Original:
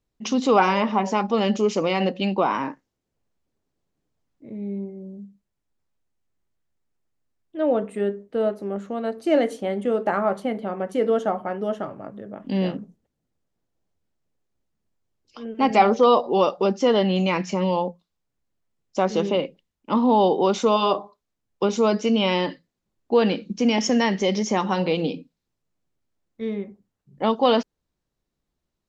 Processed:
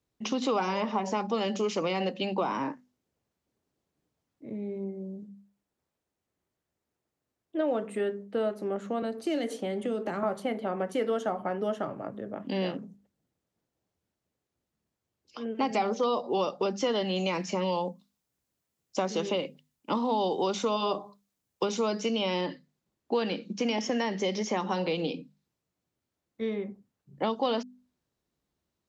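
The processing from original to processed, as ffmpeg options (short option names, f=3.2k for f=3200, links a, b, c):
-filter_complex "[0:a]asettb=1/sr,asplit=3[a][b][c];[a]atrim=end=5.224[d];[b]atrim=start=5.22:end=7.61,asetpts=PTS-STARTPTS,afade=t=in:d=0.004:c=qsin,afade=t=out:st=2.386:d=0.004:c=qsin,equalizer=f=500:w=0.63:g=4.5[e];[c]atrim=start=7.606[f];[d][e]acrossfade=d=0.004:c1=hsin:c2=qsin[g];[g][f]acrossfade=d=0.004:c1=qsin:c2=hsin,asettb=1/sr,asplit=3[h][i][j];[h]atrim=end=9.024[k];[i]atrim=start=9.02:end=10.23,asetpts=PTS-STARTPTS,afade=t=in:d=0.004:c=qsin,afade=t=out:st=1.206:d=0.004:c=qsin,acrossover=split=340|3000[l][m][n];[m]acompressor=threshold=-32dB:ratio=6:attack=3.2:release=140:knee=2.83:detection=peak[o];[l][o][n]amix=inputs=3:normalize=0[p];[j]atrim=start=10.226[q];[k][p]acrossfade=d=0.004:c1=hsin:c2=qsin[r];[r][q]acrossfade=d=0.004:c1=qsin:c2=hsin,asettb=1/sr,asplit=3[s][t][u];[s]atrim=end=16.784[v];[t]atrim=start=16.78:end=22.41,asetpts=PTS-STARTPTS,afade=t=in:d=0.004:c=qsin,afade=t=out:st=5.626:d=0.004:c=qsin,highshelf=f=5.6k:g=10[w];[u]atrim=start=22.406[x];[v][w]acrossfade=d=0.004:c1=hsin:c2=qsin[y];[y][x]acrossfade=d=0.004:c1=qsin:c2=hsin,highpass=64,bandreject=f=50:t=h:w=6,bandreject=f=100:t=h:w=6,bandreject=f=150:t=h:w=6,bandreject=f=200:t=h:w=6,bandreject=f=250:t=h:w=6,acrossover=split=310|900|4500[z][aa][ab][ac];[z]acompressor=threshold=-36dB:ratio=4[ad];[aa]acompressor=threshold=-31dB:ratio=4[ae];[ab]acompressor=threshold=-36dB:ratio=4[af];[ac]acompressor=threshold=-45dB:ratio=4[ag];[ad][ae][af][ag]amix=inputs=4:normalize=0"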